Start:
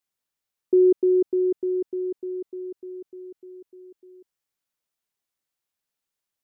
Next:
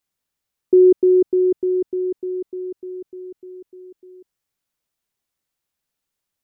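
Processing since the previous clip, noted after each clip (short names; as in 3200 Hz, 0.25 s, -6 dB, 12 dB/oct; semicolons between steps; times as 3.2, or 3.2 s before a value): low shelf 230 Hz +6.5 dB; gain +3.5 dB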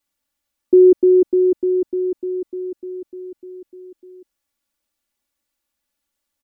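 comb 3.5 ms, depth 92%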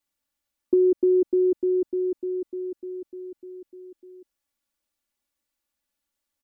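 compressor, threshold -12 dBFS, peak gain reduction 5 dB; gain -4.5 dB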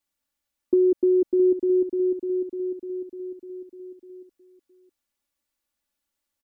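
echo 0.665 s -12 dB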